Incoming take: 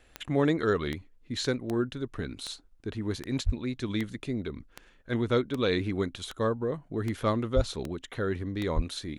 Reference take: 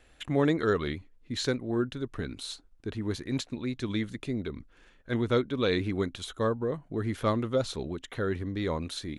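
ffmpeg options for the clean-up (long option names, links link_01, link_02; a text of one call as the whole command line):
ffmpeg -i in.wav -filter_complex "[0:a]adeclick=threshold=4,asplit=3[link_01][link_02][link_03];[link_01]afade=type=out:start_time=3.45:duration=0.02[link_04];[link_02]highpass=frequency=140:width=0.5412,highpass=frequency=140:width=1.3066,afade=type=in:start_time=3.45:duration=0.02,afade=type=out:start_time=3.57:duration=0.02[link_05];[link_03]afade=type=in:start_time=3.57:duration=0.02[link_06];[link_04][link_05][link_06]amix=inputs=3:normalize=0,asplit=3[link_07][link_08][link_09];[link_07]afade=type=out:start_time=7.55:duration=0.02[link_10];[link_08]highpass=frequency=140:width=0.5412,highpass=frequency=140:width=1.3066,afade=type=in:start_time=7.55:duration=0.02,afade=type=out:start_time=7.67:duration=0.02[link_11];[link_09]afade=type=in:start_time=7.67:duration=0.02[link_12];[link_10][link_11][link_12]amix=inputs=3:normalize=0,asplit=3[link_13][link_14][link_15];[link_13]afade=type=out:start_time=8.75:duration=0.02[link_16];[link_14]highpass=frequency=140:width=0.5412,highpass=frequency=140:width=1.3066,afade=type=in:start_time=8.75:duration=0.02,afade=type=out:start_time=8.87:duration=0.02[link_17];[link_15]afade=type=in:start_time=8.87:duration=0.02[link_18];[link_16][link_17][link_18]amix=inputs=3:normalize=0" out.wav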